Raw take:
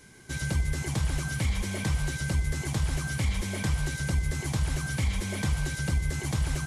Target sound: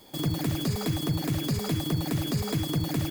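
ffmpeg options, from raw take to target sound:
ffmpeg -i in.wav -af "asetrate=94815,aresample=44100" out.wav

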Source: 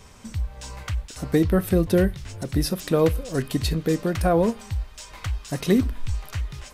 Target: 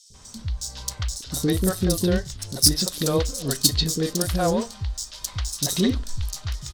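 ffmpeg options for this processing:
ffmpeg -i in.wav -filter_complex "[0:a]adynamicsmooth=sensitivity=7.5:basefreq=3100,acrossover=split=410|4100[link_01][link_02][link_03];[link_01]adelay=100[link_04];[link_02]adelay=140[link_05];[link_04][link_05][link_03]amix=inputs=3:normalize=0,aexciter=amount=8.8:drive=5.5:freq=3600,volume=-1dB" out.wav

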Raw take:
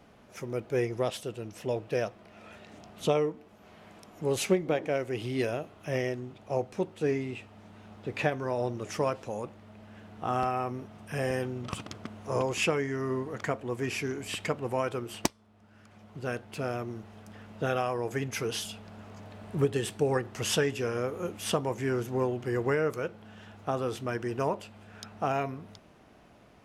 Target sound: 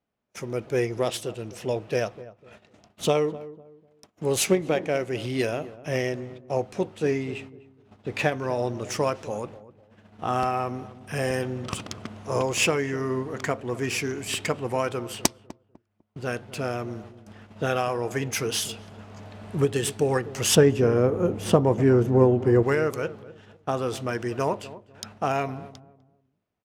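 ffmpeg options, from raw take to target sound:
ffmpeg -i in.wav -filter_complex "[0:a]aemphasis=mode=production:type=50fm,agate=range=-30dB:threshold=-47dB:ratio=16:detection=peak,asettb=1/sr,asplit=3[link_01][link_02][link_03];[link_01]atrim=end=20.554[link_04];[link_02]atrim=start=20.55:end=22.63,asetpts=PTS-STARTPTS,afade=type=in:duration=0.004:curve=qsin,afade=type=out:start_time=2.076:duration=0.004:curve=qsin,tiltshelf=frequency=1300:gain=9[link_05];[link_03]atrim=start=22.626[link_06];[link_04][link_05]acrossfade=duration=0.004:curve1=hsin:curve2=qsin[link_07];[link_07][link_06]acrossfade=duration=0.004:curve1=qsin:curve2=hsin,adynamicsmooth=sensitivity=7:basefreq=5800,asplit=2[link_08][link_09];[link_09]adelay=250,lowpass=frequency=800:poles=1,volume=-15dB,asplit=2[link_10][link_11];[link_11]adelay=250,lowpass=frequency=800:poles=1,volume=0.31,asplit=2[link_12][link_13];[link_13]adelay=250,lowpass=frequency=800:poles=1,volume=0.31[link_14];[link_08][link_10][link_12][link_14]amix=inputs=4:normalize=0,volume=4dB" out.wav

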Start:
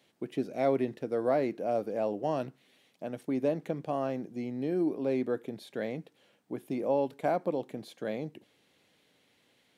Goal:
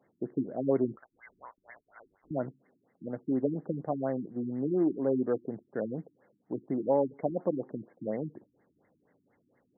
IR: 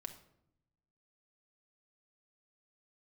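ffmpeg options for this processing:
-filter_complex "[0:a]acrusher=bits=6:mode=log:mix=0:aa=0.000001,asettb=1/sr,asplit=3[link_01][link_02][link_03];[link_01]atrim=end=0.964[link_04];[link_02]atrim=start=0.96:end=2.31,asetpts=PTS-STARTPTS,afade=type=in:duration=0.004:curve=qsin,afade=type=out:start_time=1.346:duration=0.004:curve=qsin,lowpass=frequency=2600:width_type=q:width=0.5098,lowpass=frequency=2600:width_type=q:width=0.6013,lowpass=frequency=2600:width_type=q:width=0.9,lowpass=frequency=2600:width_type=q:width=2.563,afreqshift=-3100[link_05];[link_03]atrim=start=2.306[link_06];[link_04][link_05]acrossfade=duration=0.004:curve1=hsin:curve2=qsin[link_07];[link_07][link_06]acrossfade=duration=0.004:curve1=qsin:curve2=hsin,afftfilt=real='re*lt(b*sr/1024,340*pow(2200/340,0.5+0.5*sin(2*PI*4.2*pts/sr)))':imag='im*lt(b*sr/1024,340*pow(2200/340,0.5+0.5*sin(2*PI*4.2*pts/sr)))':win_size=1024:overlap=0.75,volume=2dB"

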